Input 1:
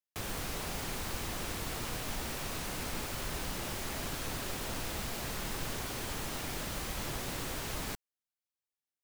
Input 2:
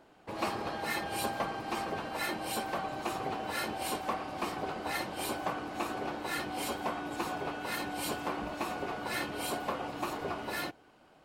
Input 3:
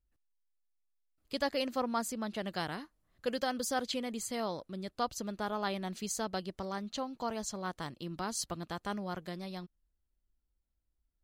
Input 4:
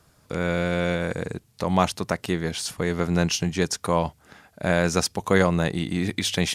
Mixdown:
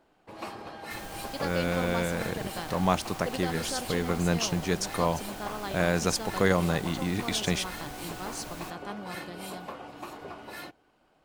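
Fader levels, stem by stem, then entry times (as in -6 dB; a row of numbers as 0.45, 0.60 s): -6.0, -5.5, -2.5, -4.5 dB; 0.75, 0.00, 0.00, 1.10 s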